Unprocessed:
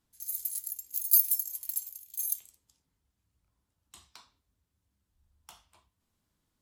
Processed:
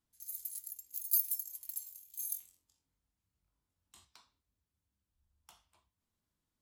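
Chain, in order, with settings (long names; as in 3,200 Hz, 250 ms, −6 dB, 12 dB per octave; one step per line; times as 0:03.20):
0:01.78–0:04.05: flutter between parallel walls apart 3.8 metres, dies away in 0.23 s
level −8 dB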